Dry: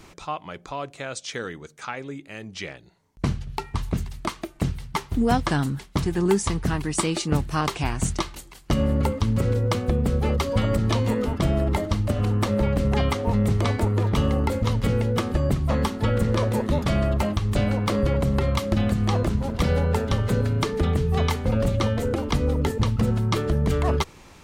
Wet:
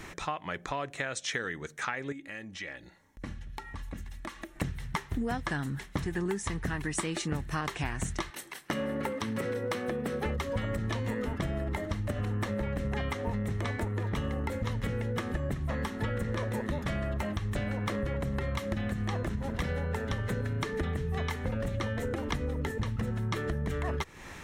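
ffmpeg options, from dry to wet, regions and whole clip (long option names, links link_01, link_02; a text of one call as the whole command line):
ffmpeg -i in.wav -filter_complex "[0:a]asettb=1/sr,asplit=3[link_01][link_02][link_03];[link_01]atrim=end=2.124[link_04];[link_02]atrim=start=2.12:end=4.57,asetpts=PTS-STARTPTS,afade=type=in:duration=0.004:curve=qsin,afade=type=out:start_time=2.446:duration=0.004:curve=qsin,aecho=1:1:3.6:0.48,atrim=end_sample=108045,acompressor=threshold=-47dB:ratio=2.5:attack=3.2:release=140:knee=1:detection=peak[link_05];[link_03]atrim=start=4.566[link_06];[link_04][link_05]acrossfade=duration=0.004:curve1=hsin:curve2=qsin[link_07];[link_07][link_06]acrossfade=duration=0.004:curve1=qsin:curve2=hsin,asettb=1/sr,asplit=3[link_08][link_09][link_10];[link_08]atrim=end=8.304[link_11];[link_09]atrim=start=8.3:end=10.26,asetpts=PTS-STARTPTS,afade=type=in:duration=0.004:curve=qsin,afade=type=out:start_time=1.956:duration=0.004:curve=qsin,highpass=250,bandreject=frequency=7000:width=7.3,asoftclip=type=hard:threshold=-20.5dB[link_12];[link_10]atrim=start=10.256[link_13];[link_11][link_12]acrossfade=duration=0.004:curve1=hsin:curve2=qsin[link_14];[link_14][link_13]acrossfade=duration=0.004:curve1=qsin:curve2=hsin,equalizer=frequency=1800:width_type=o:width=0.43:gain=10.5,bandreject=frequency=4700:width=8.7,acompressor=threshold=-32dB:ratio=6,volume=2dB" out.wav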